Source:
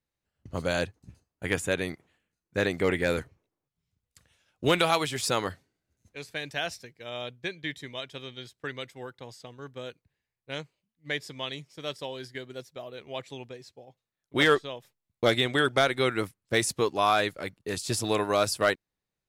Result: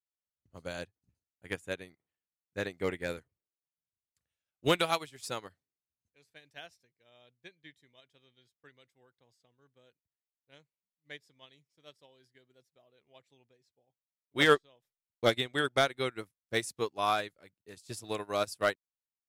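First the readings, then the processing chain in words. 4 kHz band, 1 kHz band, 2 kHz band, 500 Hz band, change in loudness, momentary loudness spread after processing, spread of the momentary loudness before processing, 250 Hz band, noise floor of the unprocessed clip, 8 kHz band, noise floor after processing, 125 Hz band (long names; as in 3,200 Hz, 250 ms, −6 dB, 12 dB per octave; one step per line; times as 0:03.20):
−6.0 dB, −5.5 dB, −6.0 dB, −6.0 dB, −3.5 dB, 21 LU, 18 LU, −7.5 dB, below −85 dBFS, −10.0 dB, below −85 dBFS, −8.5 dB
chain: high-shelf EQ 6,600 Hz +3.5 dB
expander for the loud parts 2.5 to 1, over −35 dBFS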